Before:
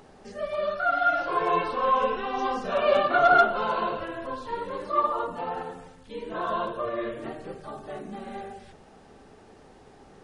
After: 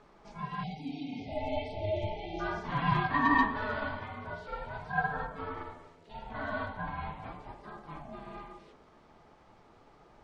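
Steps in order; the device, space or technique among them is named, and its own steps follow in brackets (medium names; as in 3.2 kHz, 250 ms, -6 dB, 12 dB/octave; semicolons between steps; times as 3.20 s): alien voice (ring modulator 430 Hz; flange 0.39 Hz, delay 4.6 ms, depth 9.3 ms, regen -57%); 0.63–2.40 s: spectral selection erased 890–2000 Hz; 0.59–1.03 s: treble shelf 5.7 kHz +10.5 dB; low-pass 5.6 kHz 12 dB/octave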